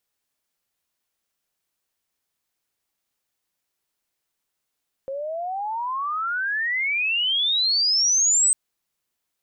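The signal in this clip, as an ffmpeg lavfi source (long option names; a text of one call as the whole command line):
ffmpeg -f lavfi -i "aevalsrc='pow(10,(-27+12*t/3.45)/20)*sin(2*PI*530*3.45/log(8300/530)*(exp(log(8300/530)*t/3.45)-1))':duration=3.45:sample_rate=44100" out.wav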